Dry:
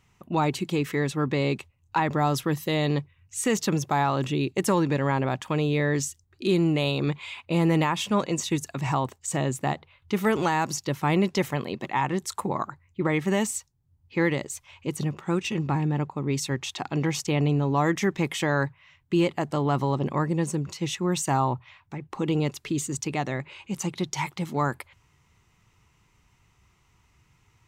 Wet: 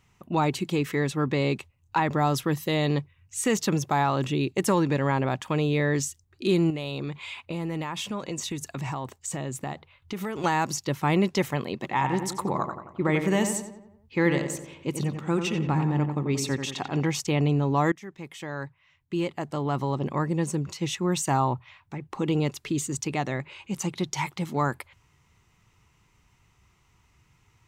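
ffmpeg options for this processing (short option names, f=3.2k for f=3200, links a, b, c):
-filter_complex "[0:a]asettb=1/sr,asplit=3[a][b][c];[a]atrim=end=6.704[d];[b]atrim=start=6.7:end=10.44,asetpts=PTS-STARTPTS,afade=t=in:d=0.004:c=qsin,afade=t=out:st=3.736:d=0.004:c=qsin,acompressor=threshold=-28dB:ratio=6:attack=3.2:release=140:knee=1:detection=peak[e];[c]atrim=start=10.436[f];[d][e]acrossfade=d=0.004:c1=hsin:c2=qsin[g];[g][f]acrossfade=d=0.004:c1=qsin:c2=hsin,asettb=1/sr,asplit=3[h][i][j];[h]atrim=end=11.804[k];[i]atrim=start=11.8:end=17.01,asetpts=PTS-STARTPTS,afade=t=in:d=0.004:c=qsin,afade=t=out:st=5.206:d=0.004:c=qsin,asplit=2[l][m];[m]adelay=89,lowpass=f=2.4k:p=1,volume=-7dB,asplit=2[n][o];[o]adelay=89,lowpass=f=2.4k:p=1,volume=0.54,asplit=2[p][q];[q]adelay=89,lowpass=f=2.4k:p=1,volume=0.54,asplit=2[r][s];[s]adelay=89,lowpass=f=2.4k:p=1,volume=0.54,asplit=2[t][u];[u]adelay=89,lowpass=f=2.4k:p=1,volume=0.54,asplit=2[v][w];[w]adelay=89,lowpass=f=2.4k:p=1,volume=0.54,asplit=2[x][y];[y]adelay=89,lowpass=f=2.4k:p=1,volume=0.54[z];[l][n][p][r][t][v][x][z]amix=inputs=8:normalize=0,atrim=end_sample=229761[aa];[j]atrim=start=17.006[ab];[k][aa]acrossfade=d=0.004:c1=hsin:c2=qsin[ac];[ac][ab]acrossfade=d=0.004:c1=qsin:c2=hsin,asplit=2[ad][ae];[ad]atrim=end=17.92,asetpts=PTS-STARTPTS,afade=t=out:st=17.916:d=0.004:c=hsin:silence=0.1[af];[ae]atrim=start=17.92,asetpts=PTS-STARTPTS,afade=t=in:d=2.69:silence=0.1[ag];[af][ag]concat=n=2:v=0:a=1"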